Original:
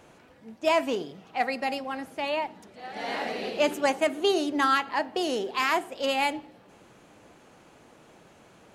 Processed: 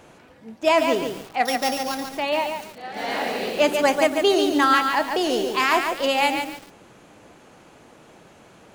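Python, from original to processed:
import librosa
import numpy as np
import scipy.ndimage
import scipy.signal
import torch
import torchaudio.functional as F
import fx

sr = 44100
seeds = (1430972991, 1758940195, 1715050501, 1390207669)

y = fx.sample_sort(x, sr, block=8, at=(1.45, 2.11))
y = fx.echo_crushed(y, sr, ms=143, feedback_pct=35, bits=7, wet_db=-5.0)
y = F.gain(torch.from_numpy(y), 5.0).numpy()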